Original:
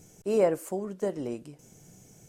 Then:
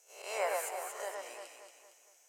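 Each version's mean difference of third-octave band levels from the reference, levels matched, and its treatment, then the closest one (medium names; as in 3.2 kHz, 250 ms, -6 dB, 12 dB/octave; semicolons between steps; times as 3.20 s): 15.0 dB: reverse spectral sustain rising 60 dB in 0.61 s; gate -45 dBFS, range -9 dB; high-pass 820 Hz 24 dB/octave; on a send: echo whose repeats swap between lows and highs 115 ms, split 2.2 kHz, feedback 67%, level -2 dB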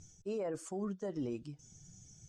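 5.0 dB: expander on every frequency bin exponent 1.5; low-pass 7.2 kHz 24 dB/octave; reverse; compression 6:1, threshold -36 dBFS, peak gain reduction 16 dB; reverse; peak limiter -36 dBFS, peak gain reduction 9 dB; trim +5.5 dB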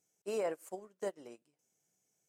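7.5 dB: high-pass 850 Hz 6 dB/octave; in parallel at -3 dB: level held to a coarse grid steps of 9 dB; on the sum: peak limiter -25 dBFS, peak gain reduction 11 dB; upward expansion 2.5:1, over -46 dBFS; trim -1 dB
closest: second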